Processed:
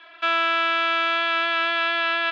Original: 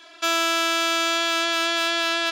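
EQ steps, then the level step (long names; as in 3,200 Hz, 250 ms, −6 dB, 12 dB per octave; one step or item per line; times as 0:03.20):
resonant band-pass 2,500 Hz, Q 0.65
high-frequency loss of the air 480 metres
+8.0 dB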